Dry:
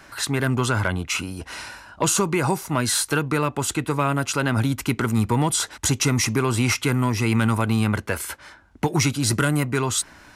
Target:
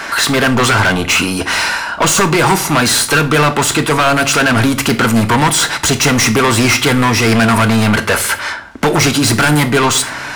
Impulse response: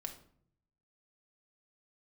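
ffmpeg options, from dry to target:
-filter_complex "[0:a]aeval=exprs='0.355*sin(PI/2*2*val(0)/0.355)':c=same,asplit=2[a][b];[b]highpass=f=720:p=1,volume=19dB,asoftclip=type=tanh:threshold=-8.5dB[c];[a][c]amix=inputs=2:normalize=0,lowpass=f=2.5k:p=1,volume=-6dB,asplit=2[d][e];[1:a]atrim=start_sample=2205,highshelf=f=3.1k:g=10[f];[e][f]afir=irnorm=-1:irlink=0,volume=1dB[g];[d][g]amix=inputs=2:normalize=0,volume=-2dB"

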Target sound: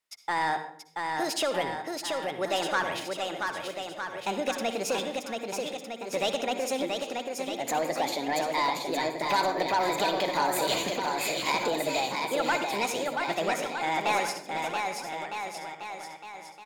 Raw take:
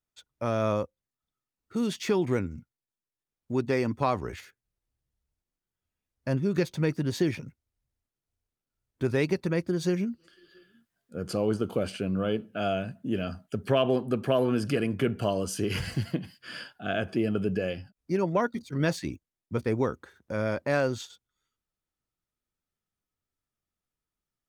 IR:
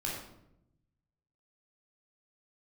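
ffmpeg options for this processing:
-filter_complex "[0:a]acompressor=threshold=-32dB:ratio=1.5,lowshelf=f=170:g=-8,asplit=2[a][b];[1:a]atrim=start_sample=2205,adelay=88[c];[b][c]afir=irnorm=-1:irlink=0,volume=-14.5dB[d];[a][d]amix=inputs=2:normalize=0,asplit=2[e][f];[f]highpass=f=720:p=1,volume=15dB,asoftclip=type=tanh:threshold=-16.5dB[g];[e][g]amix=inputs=2:normalize=0,lowpass=f=5k:p=1,volume=-6dB,asetrate=64827,aresample=44100,asplit=2[h][i];[i]aecho=0:1:680|1258|1749|2167|2522:0.631|0.398|0.251|0.158|0.1[j];[h][j]amix=inputs=2:normalize=0"

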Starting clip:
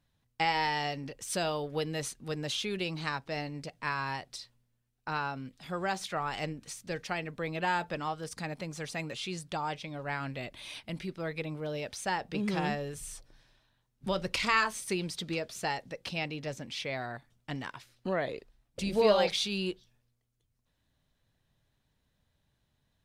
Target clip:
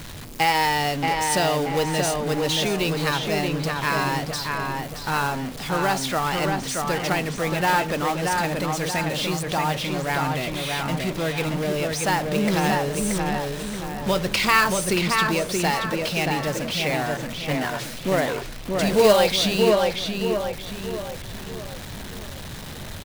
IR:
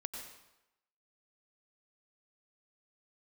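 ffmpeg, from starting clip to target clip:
-filter_complex "[0:a]aeval=exprs='val(0)+0.5*0.0141*sgn(val(0))':c=same,acrusher=bits=3:mode=log:mix=0:aa=0.000001,bandreject=f=60:t=h:w=6,bandreject=f=120:t=h:w=6,asplit=2[a][b];[b]adelay=628,lowpass=f=3k:p=1,volume=-3dB,asplit=2[c][d];[d]adelay=628,lowpass=f=3k:p=1,volume=0.47,asplit=2[e][f];[f]adelay=628,lowpass=f=3k:p=1,volume=0.47,asplit=2[g][h];[h]adelay=628,lowpass=f=3k:p=1,volume=0.47,asplit=2[i][j];[j]adelay=628,lowpass=f=3k:p=1,volume=0.47,asplit=2[k][l];[l]adelay=628,lowpass=f=3k:p=1,volume=0.47[m];[c][e][g][i][k][m]amix=inputs=6:normalize=0[n];[a][n]amix=inputs=2:normalize=0,volume=7.5dB"

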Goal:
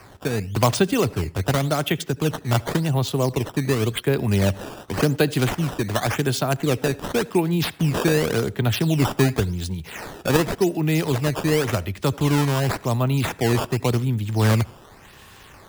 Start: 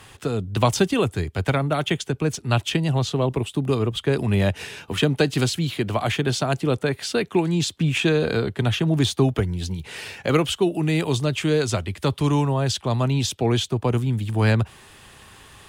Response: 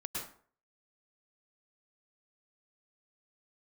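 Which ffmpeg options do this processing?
-filter_complex "[0:a]acrusher=samples=12:mix=1:aa=0.000001:lfo=1:lforange=19.2:lforate=0.9,asplit=2[a][b];[1:a]atrim=start_sample=2205,asetrate=66150,aresample=44100[c];[b][c]afir=irnorm=-1:irlink=0,volume=-18.5dB[d];[a][d]amix=inputs=2:normalize=0"

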